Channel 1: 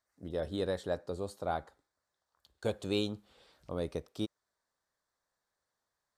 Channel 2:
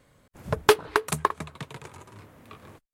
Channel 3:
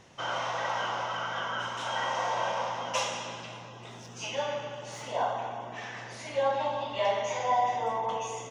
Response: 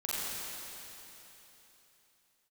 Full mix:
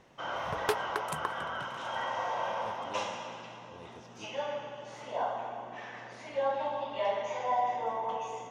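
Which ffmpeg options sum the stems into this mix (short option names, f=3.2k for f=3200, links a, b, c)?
-filter_complex "[0:a]volume=-16.5dB[a];[1:a]volume=-12.5dB[b];[2:a]lowpass=f=2.3k:p=1,equalizer=f=97:t=o:w=0.88:g=-9,volume=-3.5dB,asplit=2[c][d];[d]volume=-17.5dB[e];[3:a]atrim=start_sample=2205[f];[e][f]afir=irnorm=-1:irlink=0[g];[a][b][c][g]amix=inputs=4:normalize=0"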